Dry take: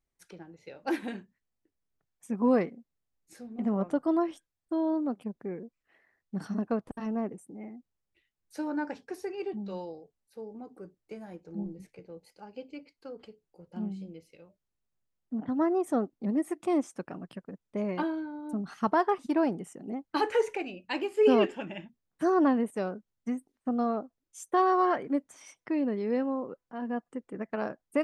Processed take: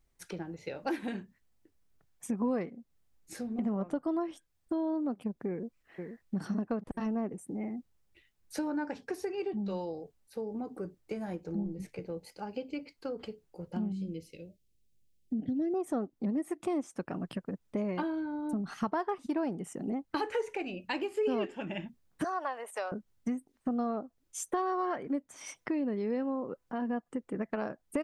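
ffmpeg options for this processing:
ffmpeg -i in.wav -filter_complex "[0:a]asplit=2[link_01][link_02];[link_02]afade=type=in:start_time=5.5:duration=0.01,afade=type=out:start_time=6.35:duration=0.01,aecho=0:1:480|960|1440:0.281838|0.0845515|0.0253654[link_03];[link_01][link_03]amix=inputs=2:normalize=0,asettb=1/sr,asplit=3[link_04][link_05][link_06];[link_04]atrim=end=13.924[link_07];[link_05]atrim=start=13.92:end=15.74,asetpts=PTS-STARTPTS,afade=type=in:duration=0.004:curve=qsin,afade=type=out:start_time=1.816:duration=0.004:curve=qsin,asuperstop=centerf=1100:order=4:qfactor=0.54[link_08];[link_06]atrim=start=15.736[link_09];[link_07][link_08]acrossfade=duration=0.004:curve1=hsin:curve2=qsin[link_10];[link_10][link_09]acrossfade=duration=0.004:curve1=qsin:curve2=hsin,asettb=1/sr,asplit=3[link_11][link_12][link_13];[link_11]atrim=end=22.244[link_14];[link_12]atrim=start=22.24:end=22.92,asetpts=PTS-STARTPTS,afade=type=in:duration=0.004:curve=qsin,afade=type=out:start_time=0.676:duration=0.004:curve=qsin,highpass=frequency=620:width=0.5412,highpass=frequency=620:width=1.3066[link_15];[link_13]atrim=start=22.916[link_16];[link_14][link_15]acrossfade=duration=0.004:curve1=hsin:curve2=qsin[link_17];[link_17][link_16]acrossfade=duration=0.004:curve1=qsin:curve2=hsin,acompressor=threshold=-43dB:ratio=3,lowshelf=frequency=120:gain=6,volume=8dB" out.wav

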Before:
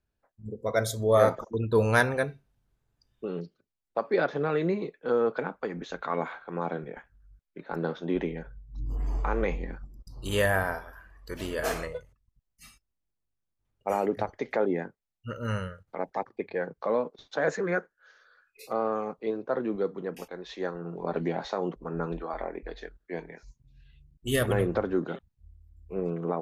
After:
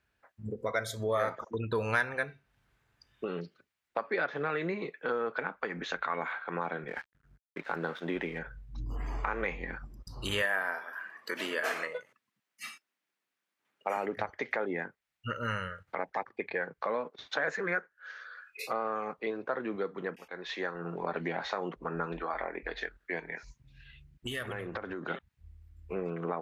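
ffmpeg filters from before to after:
ffmpeg -i in.wav -filter_complex "[0:a]asettb=1/sr,asplit=3[link_01][link_02][link_03];[link_01]atrim=end=6.884[link_04];[link_02]atrim=start=6.88:end=8.39,asetpts=PTS-STARTPTS,afade=type=in:duration=0.004:curve=qsin,afade=type=out:start_time=1.506:duration=0.004:curve=qsin,aeval=exprs='sgn(val(0))*max(abs(val(0))-0.0015,0)':channel_layout=same[link_05];[link_03]atrim=start=8.386[link_06];[link_04][link_05]acrossfade=duration=0.004:curve1=hsin:curve2=qsin[link_07];[link_07][link_06]acrossfade=duration=0.004:curve1=qsin:curve2=hsin,asettb=1/sr,asplit=3[link_08][link_09][link_10];[link_08]atrim=end=10.424[link_11];[link_09]atrim=start=10.42:end=13.97,asetpts=PTS-STARTPTS,afade=type=in:duration=0.004:curve=qsin,afade=type=out:start_time=3.546:duration=0.004:curve=qsin,highpass=frequency=210:width=0.5412,highpass=frequency=210:width=1.3066[link_12];[link_10]atrim=start=13.966[link_13];[link_11][link_12]acrossfade=duration=0.004:curve1=hsin:curve2=qsin[link_14];[link_14][link_13]acrossfade=duration=0.004:curve1=qsin:curve2=hsin,asplit=3[link_15][link_16][link_17];[link_15]afade=type=out:start_time=23.19:duration=0.02[link_18];[link_16]acompressor=threshold=-37dB:ratio=6:attack=3.2:release=140:knee=1:detection=peak,afade=type=in:start_time=23.19:duration=0.02,afade=type=out:start_time=25.09:duration=0.02[link_19];[link_17]afade=type=in:start_time=25.09:duration=0.02[link_20];[link_18][link_19][link_20]amix=inputs=3:normalize=0,asplit=2[link_21][link_22];[link_21]atrim=end=20.16,asetpts=PTS-STARTPTS,afade=type=out:start_time=20.156:duration=0.004:curve=hsin:silence=0.141254[link_23];[link_22]atrim=start=20.16,asetpts=PTS-STARTPTS,afade=type=in:duration=0.65:silence=0.141254[link_24];[link_23][link_24]concat=n=2:v=0:a=1,highpass=48,equalizer=frequency=1900:width=0.61:gain=13,acompressor=threshold=-37dB:ratio=2.5,volume=2dB" out.wav

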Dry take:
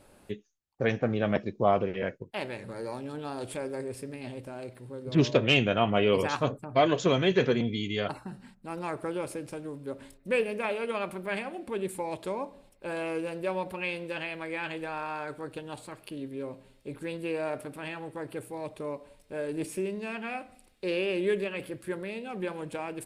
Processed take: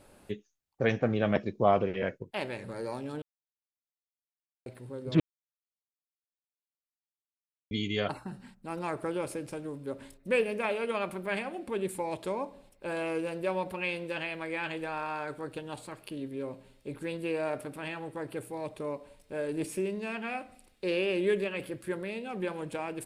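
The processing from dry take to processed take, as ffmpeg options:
ffmpeg -i in.wav -filter_complex "[0:a]asplit=5[link_01][link_02][link_03][link_04][link_05];[link_01]atrim=end=3.22,asetpts=PTS-STARTPTS,afade=type=out:start_time=3.216:duration=0.004:curve=hsin[link_06];[link_02]atrim=start=3.22:end=4.66,asetpts=PTS-STARTPTS,volume=0[link_07];[link_03]atrim=start=4.66:end=5.2,asetpts=PTS-STARTPTS,afade=type=in:duration=0.004:curve=hsin,afade=type=out:start_time=0.536:duration=0.004:curve=hsin[link_08];[link_04]atrim=start=5.2:end=7.71,asetpts=PTS-STARTPTS,volume=0[link_09];[link_05]atrim=start=7.71,asetpts=PTS-STARTPTS,afade=type=in:duration=0.004:curve=hsin[link_10];[link_06][link_07][link_08][link_09][link_10]concat=n=5:v=0:a=1" out.wav

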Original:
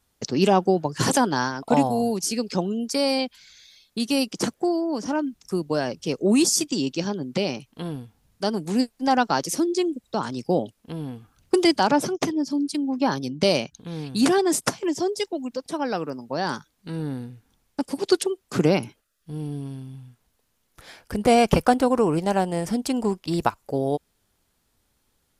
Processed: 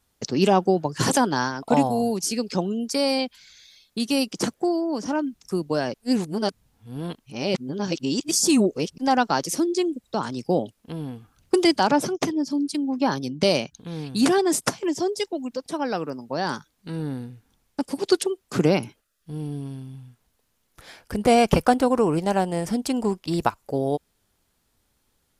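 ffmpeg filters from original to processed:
ffmpeg -i in.wav -filter_complex "[0:a]asplit=3[link_01][link_02][link_03];[link_01]atrim=end=5.942[link_04];[link_02]atrim=start=5.938:end=8.982,asetpts=PTS-STARTPTS,areverse[link_05];[link_03]atrim=start=8.978[link_06];[link_04][link_05]acrossfade=duration=0.004:curve1=hsin:curve2=hsin[link_07];[link_07][link_06]acrossfade=duration=0.004:curve1=hsin:curve2=hsin" out.wav

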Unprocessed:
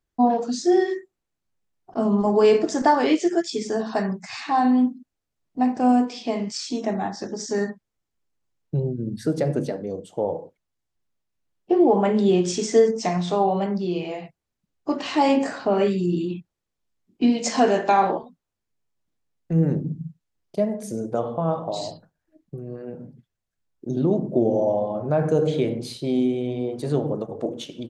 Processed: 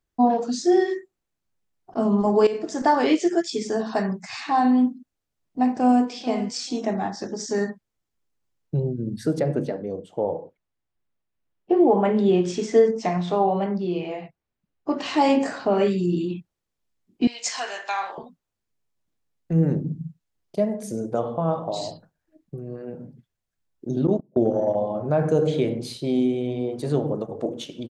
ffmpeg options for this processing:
ffmpeg -i in.wav -filter_complex "[0:a]asplit=2[link_01][link_02];[link_02]afade=type=in:start_time=5.76:duration=0.01,afade=type=out:start_time=6.22:duration=0.01,aecho=0:1:440|880:0.188365|0.0282547[link_03];[link_01][link_03]amix=inputs=2:normalize=0,asettb=1/sr,asplit=3[link_04][link_05][link_06];[link_04]atrim=end=9.394[link_07];[link_05]atrim=start=9.39:end=14.97,asetpts=PTS-STARTPTS,afade=type=in:duration=0.004:curve=qsin,afade=type=out:start_time=5.576:duration=0.004:curve=qsin,bass=frequency=250:gain=-1,treble=frequency=4000:gain=-10[link_08];[link_06]atrim=start=14.966[link_09];[link_07][link_08]acrossfade=duration=0.004:curve1=hsin:curve2=qsin[link_10];[link_10][link_09]acrossfade=duration=0.004:curve1=qsin:curve2=hsin,asettb=1/sr,asplit=3[link_11][link_12][link_13];[link_11]atrim=end=17.274[link_14];[link_12]atrim=start=17.27:end=18.18,asetpts=PTS-STARTPTS,afade=type=in:duration=0.004:curve=qsin,afade=type=out:start_time=0.906:duration=0.004:curve=qsin,highpass=1400[link_15];[link_13]atrim=start=18.176[link_16];[link_14][link_15]acrossfade=duration=0.004:curve1=hsin:curve2=qsin[link_17];[link_17][link_16]acrossfade=duration=0.004:curve1=qsin:curve2=hsin,asettb=1/sr,asplit=3[link_18][link_19][link_20];[link_18]atrim=end=24.074[link_21];[link_19]atrim=start=24.07:end=24.75,asetpts=PTS-STARTPTS,afade=type=in:duration=0.004:curve=qsin,afade=type=out:start_time=0.676:duration=0.004:curve=qsin,agate=range=-31dB:threshold=-22dB:ratio=16:release=100:detection=peak[link_22];[link_20]atrim=start=24.746[link_23];[link_21][link_22]acrossfade=duration=0.004:curve1=hsin:curve2=qsin[link_24];[link_24][link_23]acrossfade=duration=0.004:curve1=qsin:curve2=hsin,asplit=2[link_25][link_26];[link_25]atrim=end=2.47,asetpts=PTS-STARTPTS,afade=type=out:start_time=2.466:duration=0.004:curve=hsin:silence=0.177828[link_27];[link_26]atrim=start=2.47,asetpts=PTS-STARTPTS,afade=type=in:duration=0.52:silence=0.177828[link_28];[link_27][link_28]concat=n=2:v=0:a=1" out.wav

